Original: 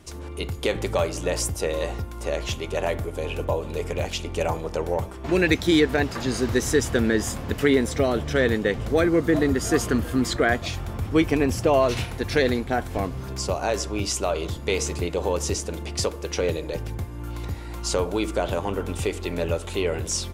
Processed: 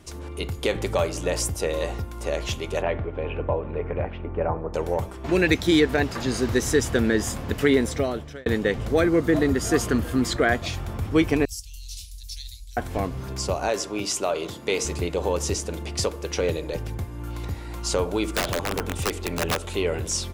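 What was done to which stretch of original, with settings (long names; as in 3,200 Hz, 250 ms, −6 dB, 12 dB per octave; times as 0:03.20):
0:02.81–0:04.73: low-pass filter 3,100 Hz → 1,500 Hz 24 dB per octave
0:07.86–0:08.46: fade out linear
0:11.45–0:12.77: inverse Chebyshev band-stop filter 240–1,000 Hz, stop band 80 dB
0:13.69–0:14.85: high-pass filter 180 Hz
0:18.36–0:19.73: wrap-around overflow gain 17.5 dB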